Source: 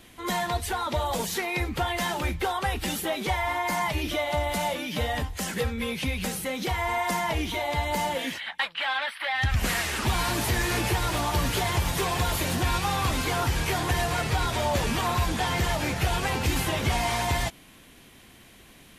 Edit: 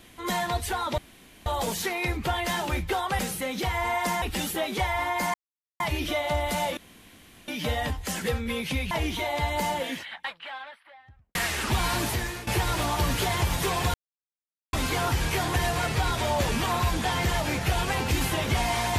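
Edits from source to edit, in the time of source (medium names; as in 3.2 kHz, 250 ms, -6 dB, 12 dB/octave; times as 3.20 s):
0.98 s: insert room tone 0.48 s
3.83 s: insert silence 0.46 s
4.80 s: insert room tone 0.71 s
6.23–7.26 s: move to 2.71 s
7.91–9.70 s: studio fade out
10.36–10.82 s: fade out, to -17.5 dB
12.29–13.08 s: mute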